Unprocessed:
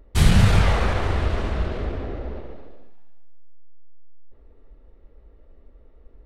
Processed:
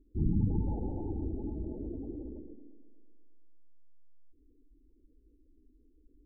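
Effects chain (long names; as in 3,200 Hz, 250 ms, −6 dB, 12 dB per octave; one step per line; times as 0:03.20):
formant resonators in series u
gate on every frequency bin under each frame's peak −20 dB strong
treble cut that deepens with the level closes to 890 Hz, closed at −31 dBFS
on a send: tape delay 114 ms, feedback 74%, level −12 dB, low-pass 1,600 Hz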